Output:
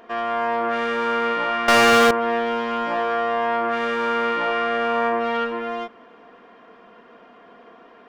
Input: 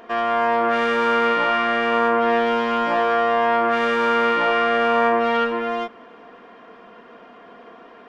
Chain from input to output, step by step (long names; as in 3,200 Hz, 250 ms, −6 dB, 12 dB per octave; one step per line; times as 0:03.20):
0:01.68–0:02.11: leveller curve on the samples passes 5
level −3.5 dB